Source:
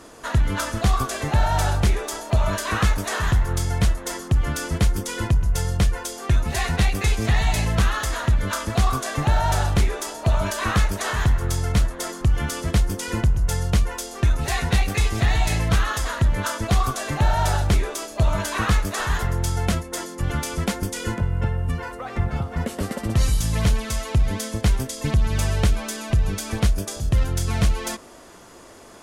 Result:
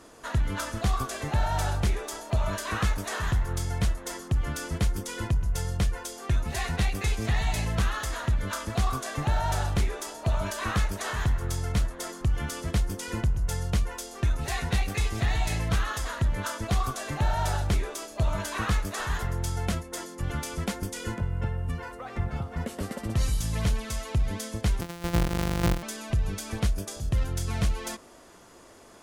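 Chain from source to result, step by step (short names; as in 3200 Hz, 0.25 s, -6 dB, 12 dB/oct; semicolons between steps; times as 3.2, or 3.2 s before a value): 24.81–25.83 sample sorter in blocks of 256 samples; gain -6.5 dB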